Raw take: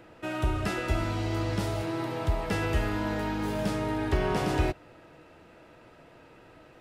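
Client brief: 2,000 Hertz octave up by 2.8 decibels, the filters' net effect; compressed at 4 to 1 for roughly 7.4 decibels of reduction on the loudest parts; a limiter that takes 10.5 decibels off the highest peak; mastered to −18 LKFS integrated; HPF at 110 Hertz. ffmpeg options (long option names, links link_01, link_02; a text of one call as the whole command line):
ffmpeg -i in.wav -af "highpass=110,equalizer=frequency=2000:width_type=o:gain=3.5,acompressor=threshold=-33dB:ratio=4,volume=25dB,alimiter=limit=-8.5dB:level=0:latency=1" out.wav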